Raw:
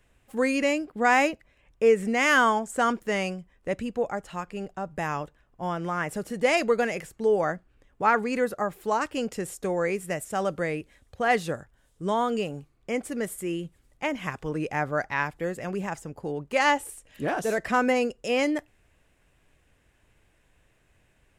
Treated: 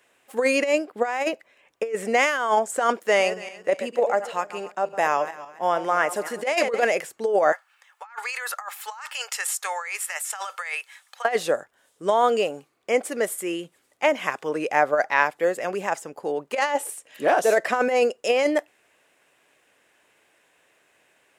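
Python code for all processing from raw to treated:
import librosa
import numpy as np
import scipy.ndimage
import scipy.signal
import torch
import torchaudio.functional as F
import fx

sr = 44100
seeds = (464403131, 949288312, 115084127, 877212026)

y = fx.chain(x, sr, fx.reverse_delay_fb(ms=140, feedback_pct=49, wet_db=-12.0),
    fx.low_shelf(hz=170.0, db=-5.0), at=(2.93, 6.84))
y = fx.chain(y, sr, fx.cheby2_highpass(hz=270.0, order=4, stop_db=60),
    fx.comb(ms=2.3, depth=0.31),
    fx.over_compress(threshold_db=-40.0, ratio=-1.0), at=(7.52, 11.25))
y = scipy.signal.sosfilt(scipy.signal.butter(2, 420.0, 'highpass', fs=sr, output='sos'), y)
y = fx.dynamic_eq(y, sr, hz=590.0, q=1.8, threshold_db=-39.0, ratio=4.0, max_db=6)
y = fx.over_compress(y, sr, threshold_db=-23.0, ratio=-0.5)
y = y * librosa.db_to_amplitude(4.5)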